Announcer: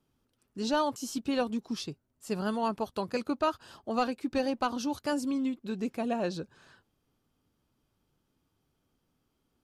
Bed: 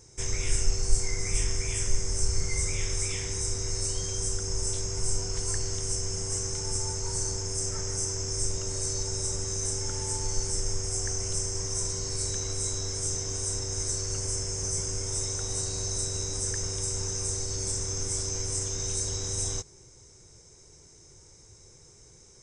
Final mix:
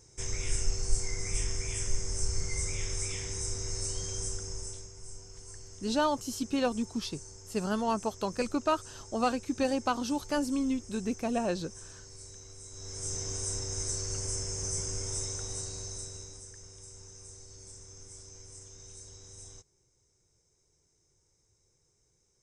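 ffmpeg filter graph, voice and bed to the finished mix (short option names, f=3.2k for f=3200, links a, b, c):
-filter_complex "[0:a]adelay=5250,volume=0.5dB[a];[1:a]volume=9.5dB,afade=t=out:st=4.18:d=0.75:silence=0.223872,afade=t=in:st=12.7:d=0.53:silence=0.199526,afade=t=out:st=15.07:d=1.41:silence=0.177828[b];[a][b]amix=inputs=2:normalize=0"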